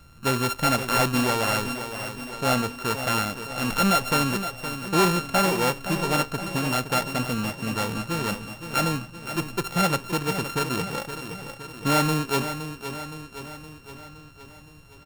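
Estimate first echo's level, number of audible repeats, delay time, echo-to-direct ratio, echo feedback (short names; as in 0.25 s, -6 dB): -10.0 dB, 6, 0.517 s, -8.0 dB, 58%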